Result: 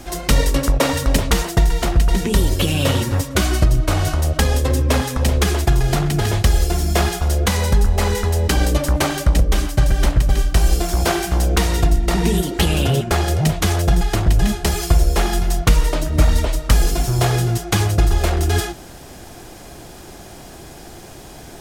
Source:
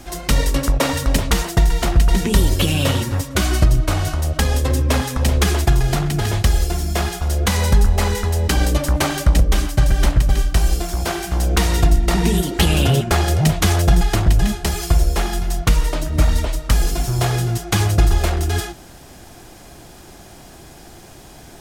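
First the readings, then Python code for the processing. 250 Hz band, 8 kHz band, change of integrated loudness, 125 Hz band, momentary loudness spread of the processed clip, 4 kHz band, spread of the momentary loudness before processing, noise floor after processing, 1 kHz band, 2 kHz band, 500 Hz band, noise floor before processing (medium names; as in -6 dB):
+0.5 dB, +0.5 dB, 0.0 dB, 0.0 dB, 21 LU, 0.0 dB, 5 LU, -38 dBFS, +0.5 dB, 0.0 dB, +2.0 dB, -41 dBFS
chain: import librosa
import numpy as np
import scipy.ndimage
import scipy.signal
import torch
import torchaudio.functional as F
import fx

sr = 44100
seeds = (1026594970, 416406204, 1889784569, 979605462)

y = fx.peak_eq(x, sr, hz=460.0, db=2.5, octaves=0.89)
y = fx.rider(y, sr, range_db=10, speed_s=0.5)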